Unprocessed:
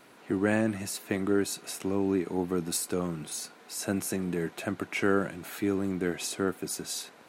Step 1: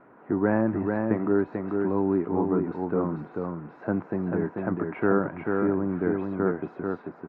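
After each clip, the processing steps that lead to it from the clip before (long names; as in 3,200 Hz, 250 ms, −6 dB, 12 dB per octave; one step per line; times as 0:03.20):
dynamic equaliser 940 Hz, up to +7 dB, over −56 dBFS, Q 5.2
low-pass filter 1,500 Hz 24 dB per octave
single-tap delay 440 ms −4 dB
level +3 dB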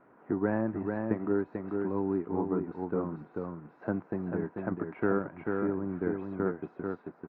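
transient designer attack +3 dB, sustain −4 dB
level −6.5 dB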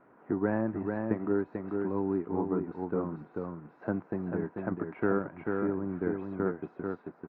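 no processing that can be heard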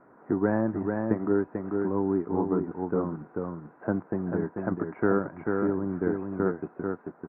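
low-pass filter 1,900 Hz 24 dB per octave
level +4 dB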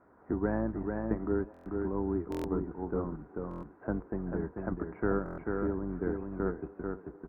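sub-octave generator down 2 octaves, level −6 dB
feedback echo with a band-pass in the loop 513 ms, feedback 62%, band-pass 400 Hz, level −18.5 dB
buffer that repeats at 0:01.52/0:02.30/0:03.49/0:05.24, samples 1,024, times 5
level −6 dB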